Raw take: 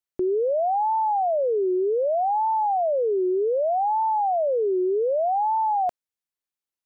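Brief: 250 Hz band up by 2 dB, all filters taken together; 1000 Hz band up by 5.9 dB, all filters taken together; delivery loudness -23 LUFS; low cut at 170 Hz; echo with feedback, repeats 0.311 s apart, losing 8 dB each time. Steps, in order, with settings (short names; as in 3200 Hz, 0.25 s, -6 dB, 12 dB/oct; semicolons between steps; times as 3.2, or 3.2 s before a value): HPF 170 Hz; bell 250 Hz +3.5 dB; bell 1000 Hz +7.5 dB; feedback echo 0.311 s, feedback 40%, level -8 dB; gain -5 dB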